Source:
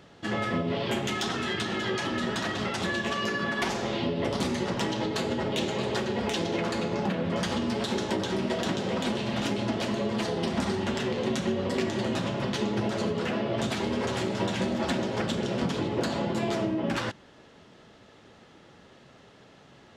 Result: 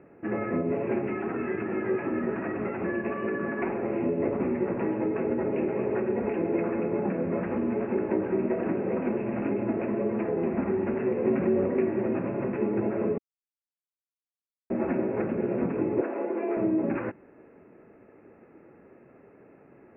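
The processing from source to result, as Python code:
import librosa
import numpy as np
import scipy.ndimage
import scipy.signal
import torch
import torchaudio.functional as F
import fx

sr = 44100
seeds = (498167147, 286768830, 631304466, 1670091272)

y = fx.env_flatten(x, sr, amount_pct=70, at=(11.25, 11.66))
y = fx.highpass(y, sr, hz=310.0, slope=24, at=(16.01, 16.57))
y = fx.edit(y, sr, fx.silence(start_s=13.18, length_s=1.52), tone=tone)
y = scipy.signal.sosfilt(scipy.signal.cheby1(8, 1.0, 2600.0, 'lowpass', fs=sr, output='sos'), y)
y = fx.peak_eq(y, sr, hz=350.0, db=11.5, octaves=1.5)
y = F.gain(torch.from_numpy(y), -6.0).numpy()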